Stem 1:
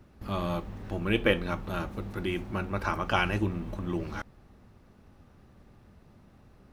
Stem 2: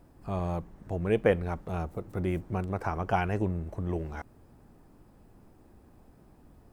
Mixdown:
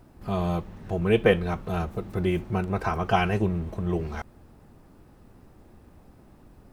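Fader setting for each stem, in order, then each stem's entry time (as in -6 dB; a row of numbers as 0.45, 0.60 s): -2.0, +3.0 dB; 0.00, 0.00 s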